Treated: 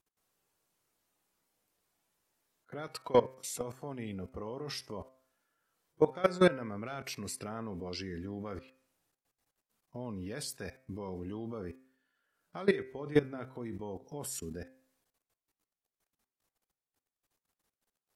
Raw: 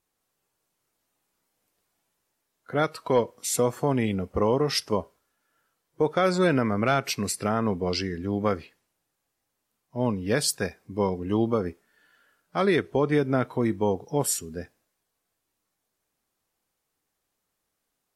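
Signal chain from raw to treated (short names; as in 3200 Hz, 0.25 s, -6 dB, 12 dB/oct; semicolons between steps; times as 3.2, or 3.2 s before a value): level quantiser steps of 20 dB; de-hum 130.9 Hz, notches 19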